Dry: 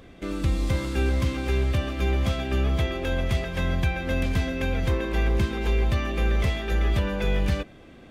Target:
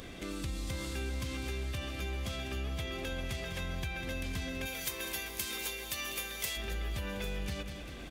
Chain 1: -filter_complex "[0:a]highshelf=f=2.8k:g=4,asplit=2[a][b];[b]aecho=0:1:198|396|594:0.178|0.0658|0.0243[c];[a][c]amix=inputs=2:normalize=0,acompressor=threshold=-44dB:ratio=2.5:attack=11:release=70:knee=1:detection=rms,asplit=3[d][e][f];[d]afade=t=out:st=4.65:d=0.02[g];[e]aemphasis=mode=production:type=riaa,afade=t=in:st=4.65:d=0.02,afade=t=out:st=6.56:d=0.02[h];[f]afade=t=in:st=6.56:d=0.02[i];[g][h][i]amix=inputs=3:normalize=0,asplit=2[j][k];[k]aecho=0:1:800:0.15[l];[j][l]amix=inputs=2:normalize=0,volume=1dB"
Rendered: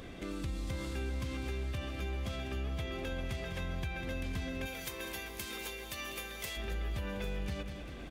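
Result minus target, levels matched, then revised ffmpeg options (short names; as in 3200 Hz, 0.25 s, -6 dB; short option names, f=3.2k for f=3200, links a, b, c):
4000 Hz band -3.0 dB
-filter_complex "[0:a]highshelf=f=2.8k:g=12,asplit=2[a][b];[b]aecho=0:1:198|396|594:0.178|0.0658|0.0243[c];[a][c]amix=inputs=2:normalize=0,acompressor=threshold=-44dB:ratio=2.5:attack=11:release=70:knee=1:detection=rms,asplit=3[d][e][f];[d]afade=t=out:st=4.65:d=0.02[g];[e]aemphasis=mode=production:type=riaa,afade=t=in:st=4.65:d=0.02,afade=t=out:st=6.56:d=0.02[h];[f]afade=t=in:st=6.56:d=0.02[i];[g][h][i]amix=inputs=3:normalize=0,asplit=2[j][k];[k]aecho=0:1:800:0.15[l];[j][l]amix=inputs=2:normalize=0,volume=1dB"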